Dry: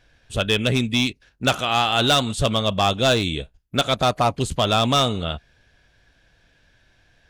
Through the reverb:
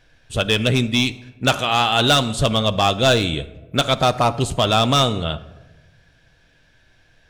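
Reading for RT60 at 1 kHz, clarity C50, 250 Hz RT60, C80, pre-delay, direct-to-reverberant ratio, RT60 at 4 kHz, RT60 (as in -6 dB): 1.0 s, 16.5 dB, 1.4 s, 18.5 dB, 6 ms, 11.5 dB, 0.60 s, 1.2 s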